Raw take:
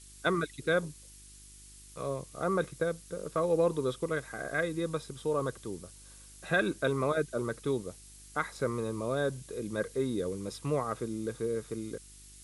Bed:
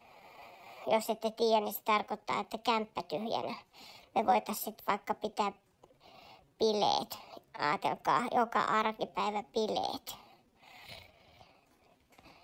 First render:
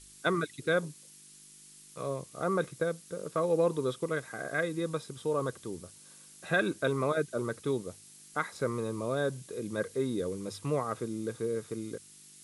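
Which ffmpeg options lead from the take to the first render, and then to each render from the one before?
-af "bandreject=f=50:t=h:w=4,bandreject=f=100:t=h:w=4"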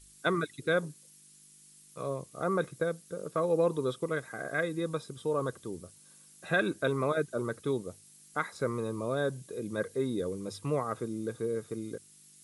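-af "afftdn=nr=6:nf=-55"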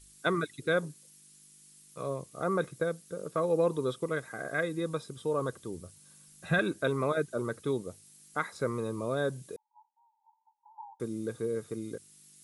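-filter_complex "[0:a]asettb=1/sr,asplit=3[s0][s1][s2];[s0]atrim=end=5.614[s3];[s1]atrim=start=5.61:end=6.59,asetpts=PTS-STARTPTS,afade=t=in:d=0.004:c=qsin,afade=t=out:st=0.976:d=0.004:c=qsin,asubboost=boost=11:cutoff=180[s4];[s2]atrim=start=6.586[s5];[s3][s4]acrossfade=d=0.004:c1=hsin:c2=qsin[s6];[s6][s5]acrossfade=d=0.004:c1=qsin:c2=hsin,asettb=1/sr,asplit=3[s7][s8][s9];[s7]atrim=end=9.564[s10];[s8]atrim=start=9.56:end=11,asetpts=PTS-STARTPTS,afade=t=in:d=0.004:c=qsin,afade=t=out:st=1.436:d=0.004:c=qsin,asuperpass=centerf=880:order=12:qfactor=5.5[s11];[s9]atrim=start=10.996[s12];[s10][s11]acrossfade=d=0.004:c1=hsin:c2=qsin[s13];[s13][s12]acrossfade=d=0.004:c1=qsin:c2=hsin"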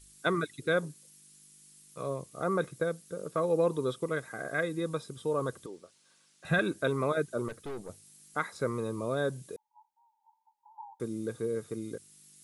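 -filter_complex "[0:a]asettb=1/sr,asplit=3[s0][s1][s2];[s0]atrim=end=5.664[s3];[s1]atrim=start=5.66:end=6.45,asetpts=PTS-STARTPTS,afade=t=in:d=0.004:c=qsin,afade=t=out:st=0.786:d=0.004:c=qsin,highpass=420,lowpass=5200[s4];[s2]atrim=start=6.446[s5];[s3][s4]acrossfade=d=0.004:c1=hsin:c2=qsin[s6];[s6][s5]acrossfade=d=0.004:c1=qsin:c2=hsin,asettb=1/sr,asplit=3[s7][s8][s9];[s7]atrim=end=7.484[s10];[s8]atrim=start=7.48:end=7.89,asetpts=PTS-STARTPTS,afade=t=in:d=0.004:c=qsin,afade=t=out:st=0.406:d=0.004:c=qsin,aeval=exprs='(tanh(63.1*val(0)+0.5)-tanh(0.5))/63.1':c=same[s11];[s9]atrim=start=7.886[s12];[s10][s11]acrossfade=d=0.004:c1=hsin:c2=qsin[s13];[s13][s12]acrossfade=d=0.004:c1=qsin:c2=hsin"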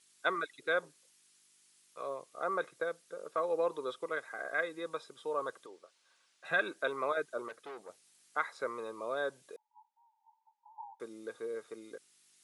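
-af "highpass=620,aemphasis=mode=reproduction:type=50fm"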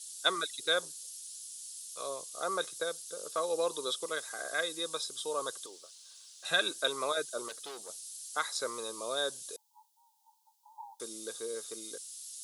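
-af "aexciter=amount=9.4:drive=4.6:freq=3200"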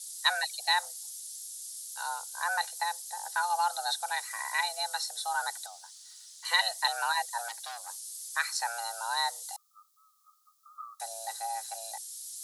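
-filter_complex "[0:a]afreqshift=350,asplit=2[s0][s1];[s1]asoftclip=type=tanh:threshold=0.0794,volume=0.447[s2];[s0][s2]amix=inputs=2:normalize=0"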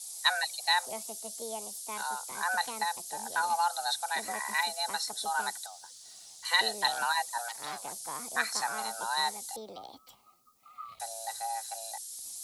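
-filter_complex "[1:a]volume=0.251[s0];[0:a][s0]amix=inputs=2:normalize=0"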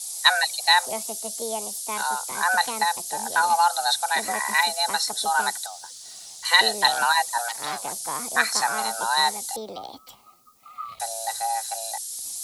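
-af "volume=2.82"

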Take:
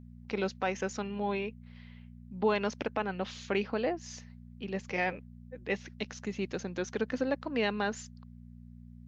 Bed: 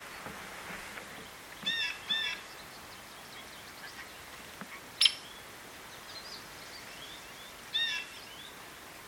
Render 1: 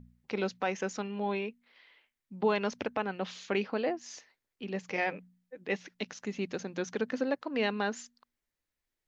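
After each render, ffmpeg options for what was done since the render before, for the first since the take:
-af "bandreject=f=60:t=h:w=4,bandreject=f=120:t=h:w=4,bandreject=f=180:t=h:w=4,bandreject=f=240:t=h:w=4"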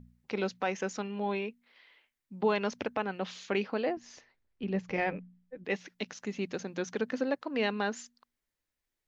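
-filter_complex "[0:a]asettb=1/sr,asplit=3[s0][s1][s2];[s0]atrim=end=3.974[s3];[s1]atrim=start=3.97:end=5.65,asetpts=PTS-STARTPTS,afade=t=in:d=0.004:c=qsin,afade=t=out:st=1.676:d=0.004:c=qsin,aemphasis=mode=reproduction:type=bsi[s4];[s2]atrim=start=5.646[s5];[s3][s4]acrossfade=d=0.004:c1=hsin:c2=qsin[s6];[s6][s5]acrossfade=d=0.004:c1=qsin:c2=hsin"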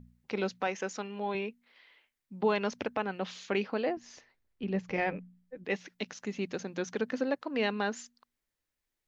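-filter_complex "[0:a]asettb=1/sr,asplit=3[s0][s1][s2];[s0]atrim=end=0.674[s3];[s1]atrim=start=0.67:end=1.35,asetpts=PTS-STARTPTS,afade=t=in:d=0.004:c=qsin,afade=t=out:st=0.676:d=0.004:c=qsin,lowshelf=f=160:g=-11.5[s4];[s2]atrim=start=1.346[s5];[s3][s4]acrossfade=d=0.004:c1=hsin:c2=qsin[s6];[s6][s5]acrossfade=d=0.004:c1=qsin:c2=hsin"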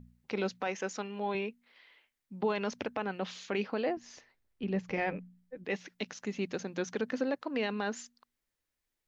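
-af "alimiter=limit=0.0841:level=0:latency=1:release=20"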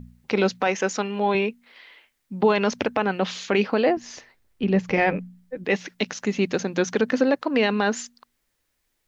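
-af "volume=3.98"

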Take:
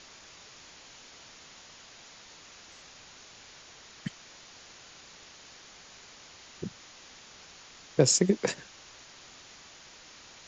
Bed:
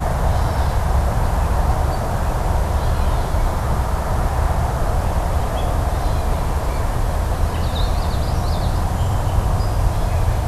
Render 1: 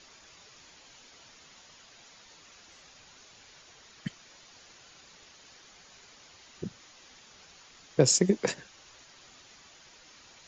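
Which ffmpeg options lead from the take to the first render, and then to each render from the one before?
-af "afftdn=nr=6:nf=-52"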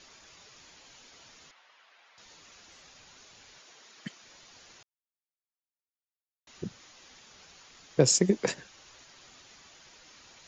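-filter_complex "[0:a]asettb=1/sr,asplit=3[s0][s1][s2];[s0]atrim=end=1.514[s3];[s1]atrim=start=1.51:end=2.18,asetpts=PTS-STARTPTS,afade=t=in:d=0.004:c=qsin,afade=t=out:st=0.666:d=0.004:c=qsin,highpass=770,lowpass=2500[s4];[s2]atrim=start=2.176[s5];[s3][s4]acrossfade=d=0.004:c1=hsin:c2=qsin[s6];[s6][s5]acrossfade=d=0.004:c1=qsin:c2=hsin,asettb=1/sr,asplit=3[s7][s8][s9];[s7]atrim=end=3.584[s10];[s8]atrim=start=3.58:end=4.23,asetpts=PTS-STARTPTS,afade=t=in:d=0.004:c=qsin,afade=t=out:st=0.646:d=0.004:c=qsin,highpass=230[s11];[s9]atrim=start=4.226[s12];[s10][s11]acrossfade=d=0.004:c1=hsin:c2=qsin[s13];[s13][s12]acrossfade=d=0.004:c1=qsin:c2=hsin,asplit=3[s14][s15][s16];[s14]atrim=end=4.83,asetpts=PTS-STARTPTS,afade=t=out:st=4.826:d=0.004:c=hsin[s17];[s15]atrim=start=4.83:end=6.47,asetpts=PTS-STARTPTS,volume=0[s18];[s16]atrim=start=6.47,asetpts=PTS-STARTPTS,afade=t=in:d=0.004:c=hsin[s19];[s17][s18][s19]concat=n=3:v=0:a=1"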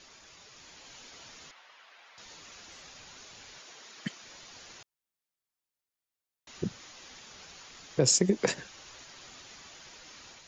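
-af "alimiter=limit=0.141:level=0:latency=1:release=137,dynaudnorm=f=490:g=3:m=1.68"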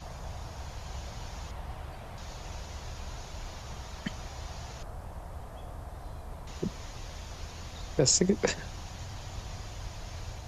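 -filter_complex "[1:a]volume=0.0708[s0];[0:a][s0]amix=inputs=2:normalize=0"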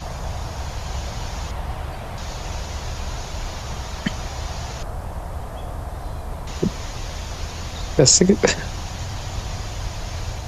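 -af "volume=3.98,alimiter=limit=0.794:level=0:latency=1"

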